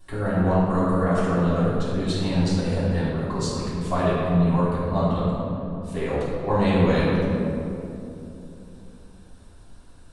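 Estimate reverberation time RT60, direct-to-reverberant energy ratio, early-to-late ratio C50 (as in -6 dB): 3.0 s, -10.5 dB, -2.5 dB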